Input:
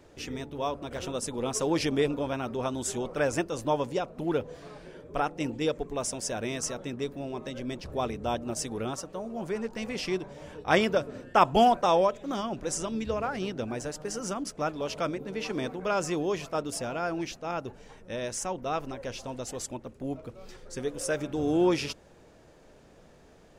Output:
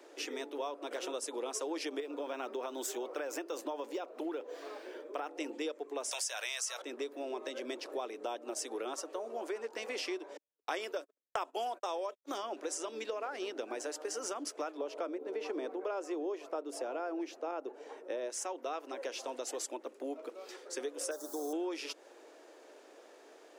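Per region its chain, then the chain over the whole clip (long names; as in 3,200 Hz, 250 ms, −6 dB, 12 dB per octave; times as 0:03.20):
0:02.00–0:05.29: downward compressor 5 to 1, threshold −27 dBFS + linearly interpolated sample-rate reduction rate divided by 2×
0:06.11–0:06.82: high-pass filter 580 Hz 24 dB per octave + tilt shelving filter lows −9.5 dB, about 1,300 Hz + envelope flattener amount 50%
0:10.37–0:12.38: noise gate −35 dBFS, range −59 dB + high-shelf EQ 5,700 Hz +9 dB
0:14.77–0:18.30: high-pass filter 230 Hz + tilt shelving filter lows +7 dB, about 1,200 Hz
0:21.11–0:21.53: spectral tilt +3.5 dB per octave + bit-depth reduction 8 bits, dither triangular + Butterworth band-reject 2,500 Hz, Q 0.57
whole clip: Butterworth high-pass 300 Hz 48 dB per octave; downward compressor 6 to 1, threshold −37 dBFS; level +1.5 dB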